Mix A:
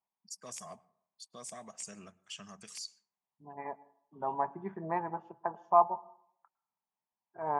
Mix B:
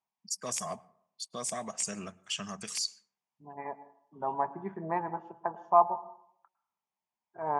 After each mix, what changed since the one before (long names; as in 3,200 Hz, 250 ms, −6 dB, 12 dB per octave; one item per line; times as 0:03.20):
first voice +10.0 dB
second voice: send +7.5 dB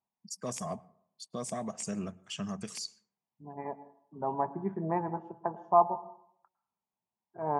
master: add tilt shelving filter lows +7 dB, about 720 Hz